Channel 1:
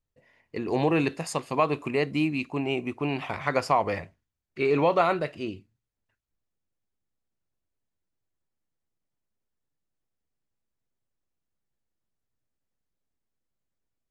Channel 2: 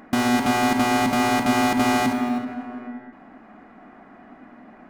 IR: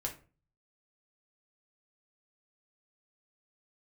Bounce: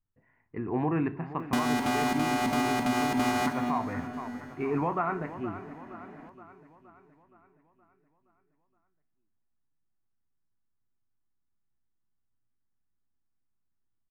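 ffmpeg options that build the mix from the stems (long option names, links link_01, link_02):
-filter_complex "[0:a]lowpass=frequency=1700:width=0.5412,lowpass=frequency=1700:width=1.3066,equalizer=frequency=540:width=2.4:gain=-14.5,volume=-3dB,asplit=3[link_01][link_02][link_03];[link_02]volume=-7dB[link_04];[link_03]volume=-12dB[link_05];[1:a]adelay=1400,volume=-3.5dB,asplit=2[link_06][link_07];[link_07]volume=-23dB[link_08];[2:a]atrim=start_sample=2205[link_09];[link_04][link_09]afir=irnorm=-1:irlink=0[link_10];[link_05][link_08]amix=inputs=2:normalize=0,aecho=0:1:470|940|1410|1880|2350|2820|3290|3760:1|0.55|0.303|0.166|0.0915|0.0503|0.0277|0.0152[link_11];[link_01][link_06][link_10][link_11]amix=inputs=4:normalize=0,alimiter=limit=-18.5dB:level=0:latency=1:release=271"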